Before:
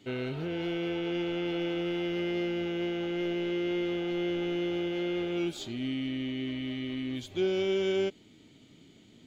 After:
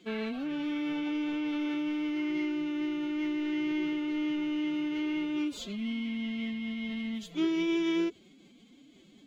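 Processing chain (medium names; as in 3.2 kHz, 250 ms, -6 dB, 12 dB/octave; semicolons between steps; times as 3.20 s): formant-preserving pitch shift +9.5 st; hum notches 50/100/150 Hz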